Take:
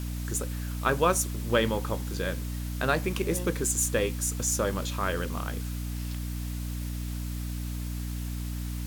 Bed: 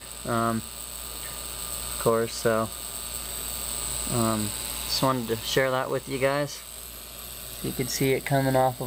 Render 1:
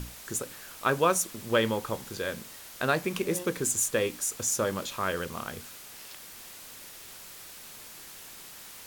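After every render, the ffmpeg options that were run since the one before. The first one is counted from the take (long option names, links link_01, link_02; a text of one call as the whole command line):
ffmpeg -i in.wav -af "bandreject=frequency=60:width_type=h:width=6,bandreject=frequency=120:width_type=h:width=6,bandreject=frequency=180:width_type=h:width=6,bandreject=frequency=240:width_type=h:width=6,bandreject=frequency=300:width_type=h:width=6" out.wav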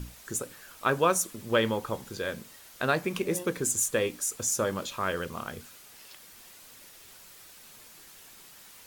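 ffmpeg -i in.wav -af "afftdn=noise_reduction=6:noise_floor=-47" out.wav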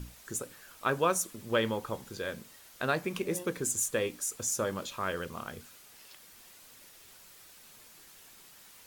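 ffmpeg -i in.wav -af "volume=-3.5dB" out.wav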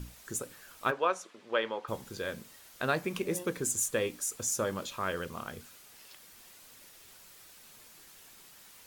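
ffmpeg -i in.wav -filter_complex "[0:a]asplit=3[link_01][link_02][link_03];[link_01]afade=type=out:start_time=0.9:duration=0.02[link_04];[link_02]highpass=450,lowpass=3400,afade=type=in:start_time=0.9:duration=0.02,afade=type=out:start_time=1.87:duration=0.02[link_05];[link_03]afade=type=in:start_time=1.87:duration=0.02[link_06];[link_04][link_05][link_06]amix=inputs=3:normalize=0" out.wav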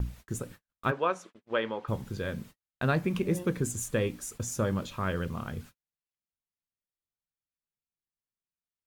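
ffmpeg -i in.wav -af "bass=frequency=250:gain=13,treble=frequency=4000:gain=-6,agate=range=-47dB:threshold=-46dB:ratio=16:detection=peak" out.wav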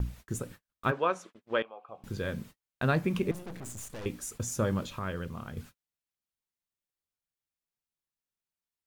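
ffmpeg -i in.wav -filter_complex "[0:a]asettb=1/sr,asplit=3[link_01][link_02][link_03];[link_01]atrim=end=1.624[link_04];[link_02]atrim=start=1.62:end=2.04,asetpts=PTS-STARTPTS,afade=type=in:duration=0.004:curve=qsin,afade=type=out:start_time=0.416:duration=0.004:curve=qsin,asplit=3[link_05][link_06][link_07];[link_05]bandpass=frequency=730:width_type=q:width=8,volume=0dB[link_08];[link_06]bandpass=frequency=1090:width_type=q:width=8,volume=-6dB[link_09];[link_07]bandpass=frequency=2440:width_type=q:width=8,volume=-9dB[link_10];[link_08][link_09][link_10]amix=inputs=3:normalize=0[link_11];[link_03]atrim=start=2.036[link_12];[link_04][link_11]acrossfade=duration=0.004:curve1=hsin:curve2=qsin[link_13];[link_13][link_12]acrossfade=duration=0.004:curve1=qsin:curve2=hsin,asettb=1/sr,asplit=3[link_14][link_15][link_16];[link_14]atrim=end=3.314[link_17];[link_15]atrim=start=3.31:end=4.06,asetpts=PTS-STARTPTS,afade=type=in:duration=0.004:curve=qsin,afade=type=out:start_time=0.746:duration=0.004:curve=qsin,aeval=exprs='(tanh(100*val(0)+0.75)-tanh(0.75))/100':channel_layout=same[link_18];[link_16]atrim=start=4.056[link_19];[link_17][link_18]acrossfade=duration=0.004:curve1=hsin:curve2=qsin[link_20];[link_20][link_19]acrossfade=duration=0.004:curve1=qsin:curve2=hsin,asplit=3[link_21][link_22][link_23];[link_21]atrim=end=4.992[link_24];[link_22]atrim=start=4.988:end=5.572,asetpts=PTS-STARTPTS,volume=-4.5dB[link_25];[link_23]atrim=start=5.568[link_26];[link_24][link_25]acrossfade=duration=0.004:curve1=hsin:curve2=hsin[link_27];[link_27][link_26]acrossfade=duration=0.004:curve1=hsin:curve2=hsin" out.wav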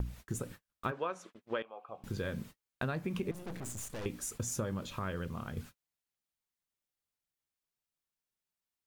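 ffmpeg -i in.wav -af "acompressor=threshold=-32dB:ratio=6" out.wav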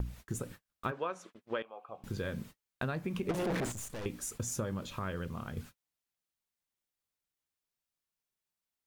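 ffmpeg -i in.wav -filter_complex "[0:a]asettb=1/sr,asplit=3[link_01][link_02][link_03];[link_01]atrim=end=3.294[link_04];[link_02]atrim=start=3.29:end=3.72,asetpts=PTS-STARTPTS,afade=type=in:duration=0.004:curve=qsin,afade=type=out:start_time=0.426:duration=0.004:curve=qsin,asplit=2[link_05][link_06];[link_06]highpass=frequency=720:poles=1,volume=38dB,asoftclip=type=tanh:threshold=-23.5dB[link_07];[link_05][link_07]amix=inputs=2:normalize=0,lowpass=frequency=1600:poles=1,volume=-6dB[link_08];[link_03]atrim=start=3.716[link_09];[link_04][link_08]acrossfade=duration=0.004:curve1=hsin:curve2=qsin[link_10];[link_10][link_09]acrossfade=duration=0.004:curve1=qsin:curve2=hsin" out.wav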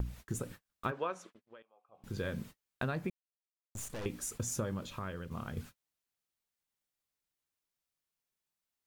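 ffmpeg -i in.wav -filter_complex "[0:a]asplit=6[link_01][link_02][link_03][link_04][link_05][link_06];[link_01]atrim=end=1.5,asetpts=PTS-STARTPTS,afade=type=out:start_time=1.21:duration=0.29:silence=0.105925[link_07];[link_02]atrim=start=1.5:end=1.91,asetpts=PTS-STARTPTS,volume=-19.5dB[link_08];[link_03]atrim=start=1.91:end=3.1,asetpts=PTS-STARTPTS,afade=type=in:duration=0.29:silence=0.105925,afade=type=out:start_time=1.186:duration=0.004:curve=hsin[link_09];[link_04]atrim=start=3.1:end=3.75,asetpts=PTS-STARTPTS,volume=0[link_10];[link_05]atrim=start=3.75:end=5.31,asetpts=PTS-STARTPTS,afade=type=in:duration=0.004:curve=hsin,afade=type=out:start_time=0.88:duration=0.68:silence=0.501187[link_11];[link_06]atrim=start=5.31,asetpts=PTS-STARTPTS,afade=type=in:duration=0.004:curve=hsin:silence=0.501187[link_12];[link_07][link_08][link_09][link_10][link_11][link_12]concat=n=6:v=0:a=1" out.wav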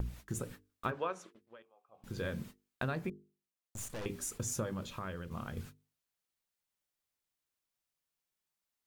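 ffmpeg -i in.wav -af "bandreject=frequency=50:width_type=h:width=6,bandreject=frequency=100:width_type=h:width=6,bandreject=frequency=150:width_type=h:width=6,bandreject=frequency=200:width_type=h:width=6,bandreject=frequency=250:width_type=h:width=6,bandreject=frequency=300:width_type=h:width=6,bandreject=frequency=350:width_type=h:width=6,bandreject=frequency=400:width_type=h:width=6,bandreject=frequency=450:width_type=h:width=6" out.wav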